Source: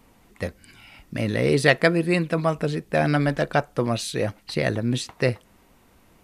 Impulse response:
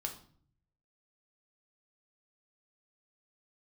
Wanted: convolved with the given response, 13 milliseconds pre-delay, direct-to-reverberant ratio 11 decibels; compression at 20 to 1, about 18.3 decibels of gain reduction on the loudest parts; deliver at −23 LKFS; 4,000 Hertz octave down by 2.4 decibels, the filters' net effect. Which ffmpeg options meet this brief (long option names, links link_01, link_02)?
-filter_complex "[0:a]equalizer=frequency=4000:width_type=o:gain=-3,acompressor=threshold=-30dB:ratio=20,asplit=2[link_01][link_02];[1:a]atrim=start_sample=2205,adelay=13[link_03];[link_02][link_03]afir=irnorm=-1:irlink=0,volume=-11dB[link_04];[link_01][link_04]amix=inputs=2:normalize=0,volume=12.5dB"